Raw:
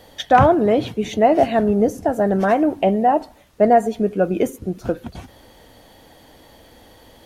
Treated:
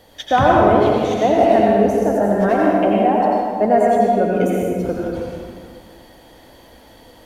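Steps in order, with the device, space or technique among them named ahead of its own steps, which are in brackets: stairwell (reverberation RT60 2.1 s, pre-delay 80 ms, DRR -4 dB); trim -3 dB

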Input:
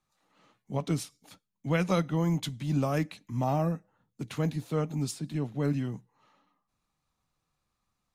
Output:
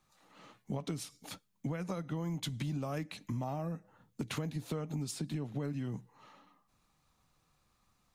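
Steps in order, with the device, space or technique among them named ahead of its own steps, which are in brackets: serial compression, peaks first (compression, threshold -36 dBFS, peak gain reduction 14.5 dB; compression 3:1, threshold -42 dBFS, peak gain reduction 7 dB); 1.67–2.08 s: peaking EQ 3.1 kHz -7.5 dB 0.94 oct; trim +7 dB

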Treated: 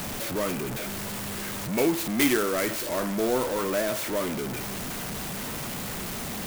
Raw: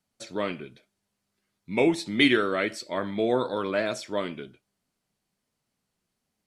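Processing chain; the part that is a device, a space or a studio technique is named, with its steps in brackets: early CD player with a faulty converter (jump at every zero crossing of -22.5 dBFS; sampling jitter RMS 0.06 ms); trim -4 dB

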